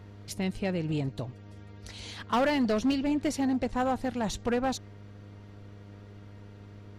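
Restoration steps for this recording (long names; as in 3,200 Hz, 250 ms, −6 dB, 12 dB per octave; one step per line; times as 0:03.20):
clipped peaks rebuilt −21 dBFS
hum removal 101.5 Hz, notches 7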